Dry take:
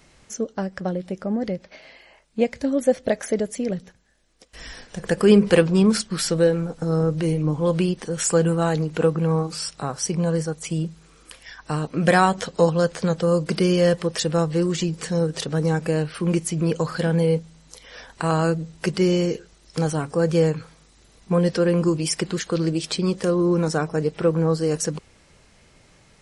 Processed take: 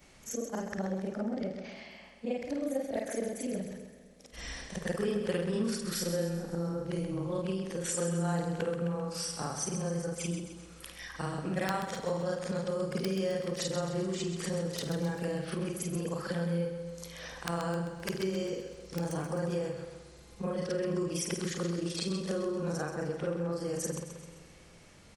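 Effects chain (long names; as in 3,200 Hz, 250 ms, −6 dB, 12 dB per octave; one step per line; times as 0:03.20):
every overlapping window played backwards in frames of 110 ms
downward compressor 3 to 1, threshold −34 dBFS, peak gain reduction 15 dB
wrap-around overflow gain 20 dB
repeating echo 136 ms, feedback 50%, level −8.5 dB
dense smooth reverb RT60 3.1 s, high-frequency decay 0.75×, DRR 15.5 dB
wrong playback speed 24 fps film run at 25 fps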